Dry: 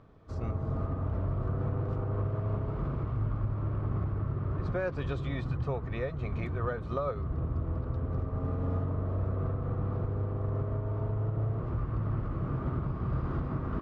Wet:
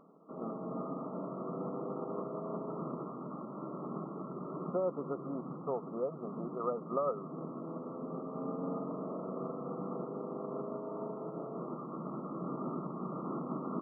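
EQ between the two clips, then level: brick-wall FIR band-pass 160–1400 Hz; 0.0 dB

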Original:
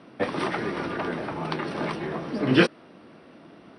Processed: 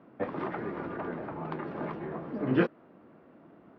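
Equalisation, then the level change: low-pass 1.5 kHz 12 dB/octave; -6.0 dB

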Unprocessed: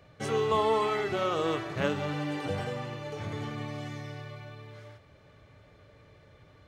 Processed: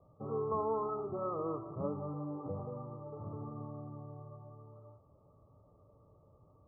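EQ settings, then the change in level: dynamic bell 740 Hz, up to -5 dB, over -48 dBFS, Q 3.4; Chebyshev low-pass 1.3 kHz, order 10; -6.5 dB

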